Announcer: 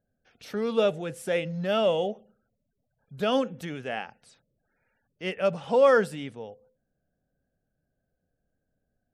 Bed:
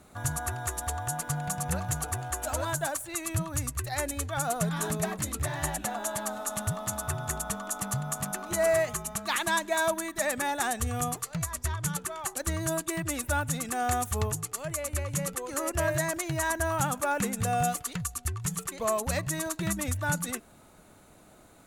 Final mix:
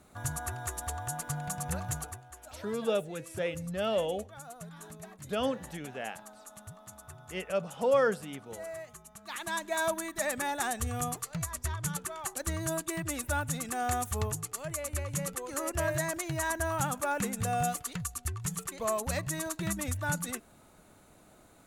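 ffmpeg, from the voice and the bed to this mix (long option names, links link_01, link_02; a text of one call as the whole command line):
ffmpeg -i stem1.wav -i stem2.wav -filter_complex "[0:a]adelay=2100,volume=-6dB[link_01];[1:a]volume=10dB,afade=type=out:start_time=1.95:duration=0.26:silence=0.223872,afade=type=in:start_time=9.17:duration=0.69:silence=0.199526[link_02];[link_01][link_02]amix=inputs=2:normalize=0" out.wav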